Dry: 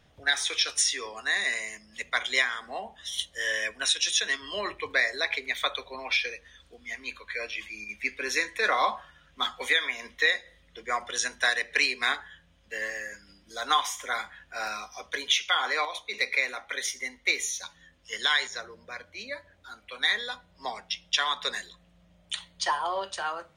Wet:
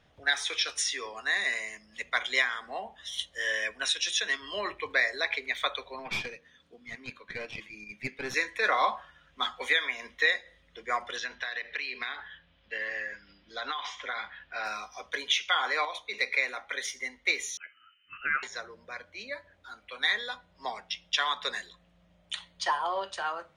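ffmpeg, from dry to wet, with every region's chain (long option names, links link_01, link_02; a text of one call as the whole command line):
ffmpeg -i in.wav -filter_complex "[0:a]asettb=1/sr,asplit=3[link_01][link_02][link_03];[link_01]atrim=end=5.994[link_04];[link_02]atrim=start=5.99:end=8.34,asetpts=PTS-STARTPTS,afade=type=in:duration=0.004:curve=qsin,afade=type=out:start_time=2.346:duration=0.004:curve=qsin,highpass=120,aeval=exprs='(tanh(17.8*val(0)+0.8)-tanh(0.8))/17.8':channel_layout=same,equalizer=frequency=180:width_type=o:width=2.4:gain=9.5[link_05];[link_03]atrim=start=8.336[link_06];[link_04][link_05]acrossfade=duration=0.004:curve1=hsin:curve2=qsin[link_07];[link_07][link_06]acrossfade=duration=0.004:curve1=qsin:curve2=hsin,asettb=1/sr,asplit=3[link_08][link_09][link_10];[link_08]atrim=end=11.164[link_11];[link_09]atrim=start=11.16:end=14.65,asetpts=PTS-STARTPTS,afade=type=in:duration=0.004:curve=qsin,afade=type=out:start_time=3.486:duration=0.004:curve=qsin,lowpass=frequency=4100:width=0.5412,lowpass=frequency=4100:width=1.3066,highshelf=frequency=2500:gain=8,acompressor=threshold=-28dB:ratio=16:attack=3.2:release=140:knee=1:detection=peak[link_12];[link_10]atrim=start=14.646[link_13];[link_11][link_12]acrossfade=duration=0.004:curve1=hsin:curve2=qsin[link_14];[link_14][link_13]acrossfade=duration=0.004:curve1=qsin:curve2=hsin,asettb=1/sr,asplit=3[link_15][link_16][link_17];[link_15]atrim=end=17.574[link_18];[link_16]atrim=start=17.57:end=18.43,asetpts=PTS-STARTPTS,afade=type=in:duration=0.004:curve=qsin,afade=type=out:start_time=0.856:duration=0.004:curve=qsin,asuperstop=centerf=2400:order=8:qfactor=1.7,lowpass=frequency=2600:width_type=q:width=0.5098,lowpass=frequency=2600:width_type=q:width=0.6013,lowpass=frequency=2600:width_type=q:width=0.9,lowpass=frequency=2600:width_type=q:width=2.563,afreqshift=-3100[link_19];[link_17]atrim=start=18.426[link_20];[link_18][link_19]acrossfade=duration=0.004:curve1=hsin:curve2=qsin[link_21];[link_21][link_20]acrossfade=duration=0.004:curve1=qsin:curve2=hsin,lowpass=frequency=3800:poles=1,lowshelf=frequency=320:gain=-4.5" out.wav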